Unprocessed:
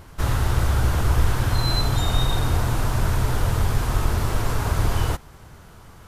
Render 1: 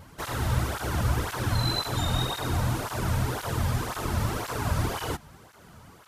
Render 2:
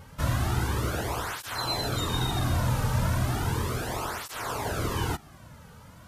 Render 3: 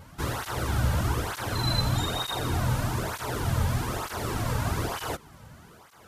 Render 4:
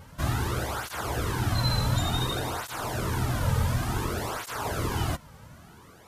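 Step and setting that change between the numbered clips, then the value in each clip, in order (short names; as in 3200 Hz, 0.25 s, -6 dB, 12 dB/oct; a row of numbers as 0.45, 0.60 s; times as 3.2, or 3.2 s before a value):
tape flanging out of phase, nulls at: 1.9, 0.35, 1.1, 0.56 Hz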